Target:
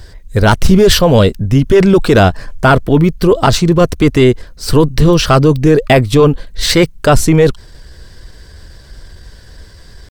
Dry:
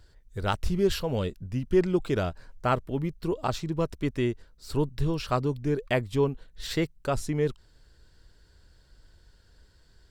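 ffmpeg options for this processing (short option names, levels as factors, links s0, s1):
-af "apsyclip=15.8,asetrate=46722,aresample=44100,atempo=0.943874,volume=0.794"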